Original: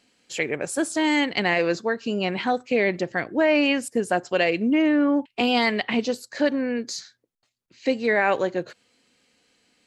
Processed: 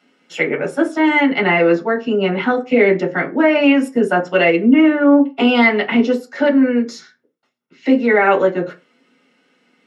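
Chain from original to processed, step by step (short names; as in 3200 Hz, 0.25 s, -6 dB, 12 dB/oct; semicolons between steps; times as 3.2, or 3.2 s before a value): 0.66–2.42 high shelf 5000 Hz -8 dB; reverb RT60 0.25 s, pre-delay 3 ms, DRR -0.5 dB; gain -4.5 dB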